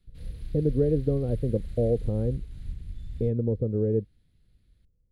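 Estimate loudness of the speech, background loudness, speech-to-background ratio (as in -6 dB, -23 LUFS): -27.5 LUFS, -41.0 LUFS, 13.5 dB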